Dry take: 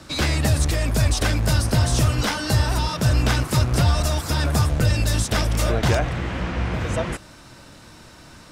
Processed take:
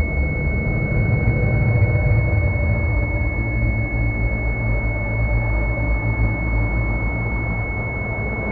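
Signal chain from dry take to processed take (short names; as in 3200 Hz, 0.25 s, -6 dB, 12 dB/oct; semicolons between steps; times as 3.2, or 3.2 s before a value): Paulstretch 15×, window 0.25 s, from 4.74; pulse-width modulation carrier 2200 Hz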